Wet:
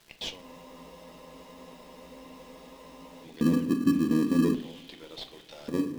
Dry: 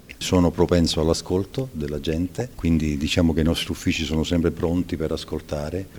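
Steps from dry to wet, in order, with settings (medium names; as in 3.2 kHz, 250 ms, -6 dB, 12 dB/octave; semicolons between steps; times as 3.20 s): high-pass 200 Hz 6 dB/octave; tilt shelf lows +6 dB, about 1.1 kHz; hum notches 50/100/150/200/250/300/350/400/450/500 Hz; peak limiter -13 dBFS, peak gain reduction 10 dB; echo that smears into a reverb 468 ms, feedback 59%, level -15.5 dB; LFO band-pass square 0.44 Hz 260–3600 Hz; crackle 400 per s -47 dBFS; in parallel at -7.5 dB: sample-and-hold 31×; on the sum: simulated room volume 260 m³, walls furnished, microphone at 0.75 m; spectral freeze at 0.44 s, 2.80 s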